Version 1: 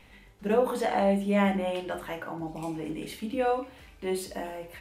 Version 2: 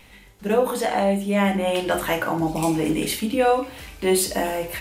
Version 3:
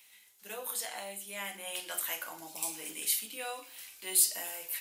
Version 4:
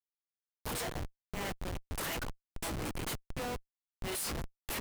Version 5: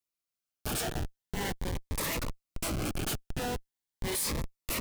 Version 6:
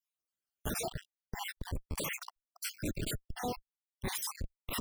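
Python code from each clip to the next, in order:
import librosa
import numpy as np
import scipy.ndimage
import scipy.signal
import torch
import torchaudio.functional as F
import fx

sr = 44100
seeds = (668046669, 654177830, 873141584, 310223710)

y1 = fx.high_shelf(x, sr, hz=4200.0, db=8.5)
y1 = fx.rider(y1, sr, range_db=5, speed_s=0.5)
y1 = y1 * librosa.db_to_amplitude(7.5)
y2 = np.diff(y1, prepend=0.0)
y2 = y2 * librosa.db_to_amplitude(-2.0)
y3 = np.sign(y2) * np.maximum(np.abs(y2) - 10.0 ** (-44.5 / 20.0), 0.0)
y3 = fx.tremolo_shape(y3, sr, shape='triangle', hz=1.5, depth_pct=95)
y3 = fx.schmitt(y3, sr, flips_db=-42.5)
y3 = y3 * librosa.db_to_amplitude(4.0)
y4 = fx.notch_cascade(y3, sr, direction='rising', hz=0.43)
y4 = y4 * librosa.db_to_amplitude(5.5)
y5 = fx.spec_dropout(y4, sr, seeds[0], share_pct=57)
y5 = fx.dereverb_blind(y5, sr, rt60_s=1.7)
y5 = fx.transformer_sat(y5, sr, knee_hz=51.0)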